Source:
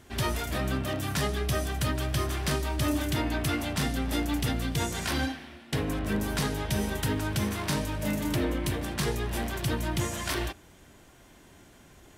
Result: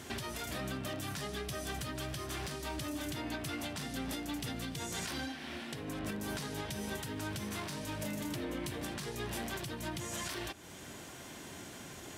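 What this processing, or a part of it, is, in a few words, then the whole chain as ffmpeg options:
broadcast voice chain: -af "highpass=100,deesser=0.5,acompressor=threshold=-41dB:ratio=3,equalizer=frequency=5900:width_type=o:width=2.1:gain=4,alimiter=level_in=11dB:limit=-24dB:level=0:latency=1:release=409,volume=-11dB,volume=6.5dB"

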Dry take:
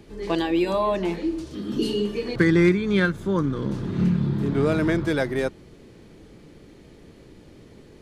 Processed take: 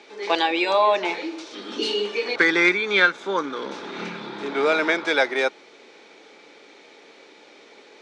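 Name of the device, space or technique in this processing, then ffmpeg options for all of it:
phone speaker on a table: -af "highpass=frequency=340:width=0.5412,highpass=frequency=340:width=1.3066,equalizer=frequency=340:width_type=q:width=4:gain=-6,equalizer=frequency=840:width_type=q:width=4:gain=7,equalizer=frequency=1400:width_type=q:width=4:gain=6,equalizer=frequency=2300:width_type=q:width=4:gain=10,equalizer=frequency=3700:width_type=q:width=4:gain=8,equalizer=frequency=5700:width_type=q:width=4:gain=5,lowpass=frequency=7500:width=0.5412,lowpass=frequency=7500:width=1.3066,volume=3dB"

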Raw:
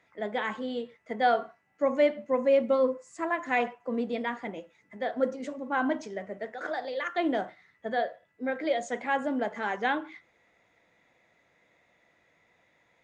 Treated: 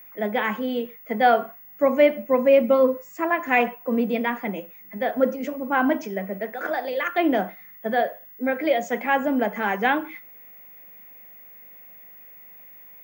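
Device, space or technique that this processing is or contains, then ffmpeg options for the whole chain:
old television with a line whistle: -af "highpass=frequency=180:width=0.5412,highpass=frequency=180:width=1.3066,equalizer=frequency=190:width_type=q:width=4:gain=9,equalizer=frequency=2500:width_type=q:width=4:gain=5,equalizer=frequency=4000:width_type=q:width=4:gain=-9,lowpass=frequency=6800:width=0.5412,lowpass=frequency=6800:width=1.3066,aeval=exprs='val(0)+0.00316*sin(2*PI*15625*n/s)':channel_layout=same,volume=6.5dB"

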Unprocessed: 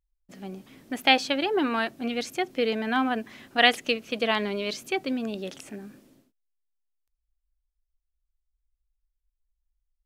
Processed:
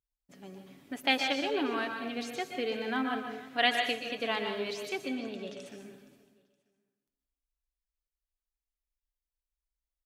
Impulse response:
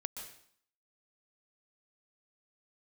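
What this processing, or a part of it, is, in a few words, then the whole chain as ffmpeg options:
bathroom: -filter_complex "[0:a]highpass=frequency=66:poles=1,aecho=1:1:7.1:0.37,asettb=1/sr,asplit=3[link_01][link_02][link_03];[link_01]atrim=end=5.004[link_04];[link_02]atrim=start=5:end=5.66,asetpts=PTS-STARTPTS,afade=type=in:duration=0.004:curve=qsin,afade=type=out:start_time=0.656:duration=0.004:curve=qsin,lowpass=6700[link_05];[link_03]atrim=start=5.656[link_06];[link_04][link_05]acrossfade=duration=0.004:curve1=hsin:curve2=qsin[link_07];[link_07][link_06]acrossfade=duration=0.004:curve1=qsin:curve2=hsin,aecho=1:1:469|938:0.1|0.029[link_08];[1:a]atrim=start_sample=2205[link_09];[link_08][link_09]afir=irnorm=-1:irlink=0,volume=-5.5dB"

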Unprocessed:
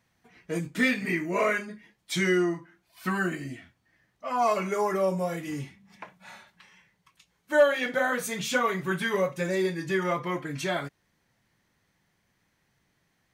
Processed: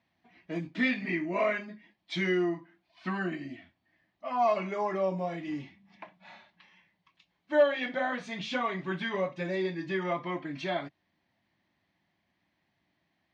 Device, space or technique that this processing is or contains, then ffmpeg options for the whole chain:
guitar cabinet: -af "highpass=85,equalizer=frequency=130:width_type=q:width=4:gain=-8,equalizer=frequency=310:width_type=q:width=4:gain=4,equalizer=frequency=460:width_type=q:width=4:gain=-10,equalizer=frequency=660:width_type=q:width=4:gain=5,equalizer=frequency=1400:width_type=q:width=4:gain=-7,lowpass=frequency=4400:width=0.5412,lowpass=frequency=4400:width=1.3066,volume=-3dB"

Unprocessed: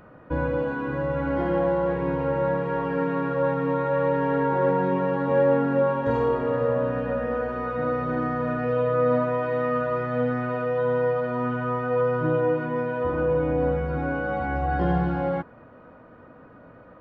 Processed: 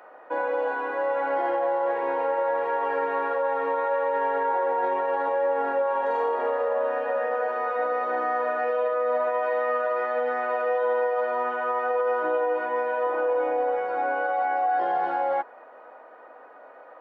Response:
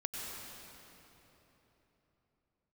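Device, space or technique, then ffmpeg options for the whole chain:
laptop speaker: -af "highpass=frequency=410:width=0.5412,highpass=frequency=410:width=1.3066,equalizer=frequency=790:width_type=o:width=0.56:gain=10,equalizer=frequency=1900:width_type=o:width=0.48:gain=4.5,alimiter=limit=-17.5dB:level=0:latency=1:release=39"

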